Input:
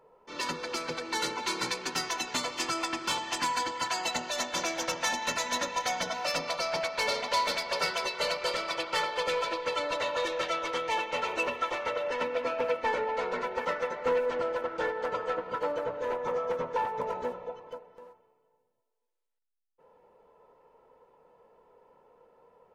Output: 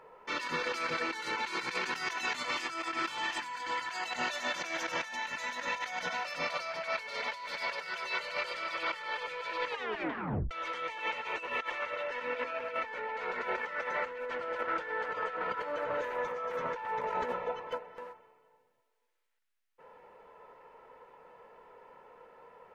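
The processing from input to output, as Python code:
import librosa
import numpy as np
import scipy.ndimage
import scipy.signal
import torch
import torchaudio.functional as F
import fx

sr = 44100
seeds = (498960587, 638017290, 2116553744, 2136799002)

y = fx.high_shelf(x, sr, hz=8800.0, db=10.5, at=(15.94, 16.71))
y = fx.edit(y, sr, fx.tape_stop(start_s=9.7, length_s=0.81), tone=tone)
y = fx.peak_eq(y, sr, hz=1900.0, db=11.5, octaves=1.8)
y = fx.over_compress(y, sr, threshold_db=-33.0, ratio=-1.0)
y = y * 10.0 ** (-4.0 / 20.0)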